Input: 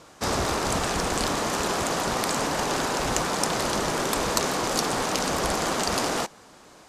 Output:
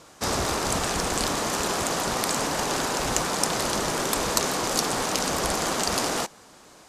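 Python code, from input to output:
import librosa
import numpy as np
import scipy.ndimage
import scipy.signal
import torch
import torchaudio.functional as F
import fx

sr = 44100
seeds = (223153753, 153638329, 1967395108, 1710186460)

y = fx.high_shelf(x, sr, hz=5000.0, db=5.0)
y = y * 10.0 ** (-1.0 / 20.0)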